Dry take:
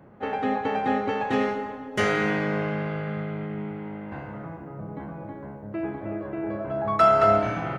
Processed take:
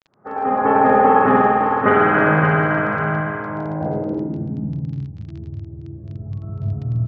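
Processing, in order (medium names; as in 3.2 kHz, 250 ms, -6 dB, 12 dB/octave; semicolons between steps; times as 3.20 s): fade-in on the opening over 0.62 s; random-step tremolo; tempo 1.1×; high-pass 71 Hz; feedback delay 563 ms, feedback 29%, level -5 dB; reverberation RT60 2.4 s, pre-delay 51 ms; low-pass sweep 1.3 kHz -> 110 Hz, 3.38–5.11 s; crackle 21 per s -29 dBFS; low-pass 5 kHz 24 dB/octave; trim -1.5 dB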